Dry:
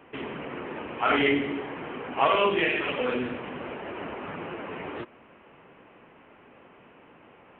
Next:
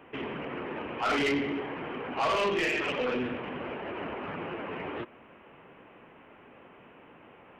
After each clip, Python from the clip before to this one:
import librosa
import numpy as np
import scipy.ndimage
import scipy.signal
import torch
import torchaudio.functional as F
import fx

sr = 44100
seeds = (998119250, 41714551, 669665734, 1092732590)

y = 10.0 ** (-23.0 / 20.0) * np.tanh(x / 10.0 ** (-23.0 / 20.0))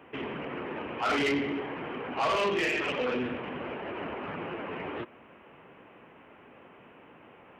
y = scipy.signal.sosfilt(scipy.signal.butter(2, 45.0, 'highpass', fs=sr, output='sos'), x)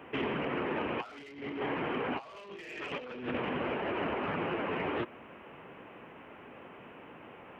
y = fx.over_compress(x, sr, threshold_db=-35.0, ratio=-0.5)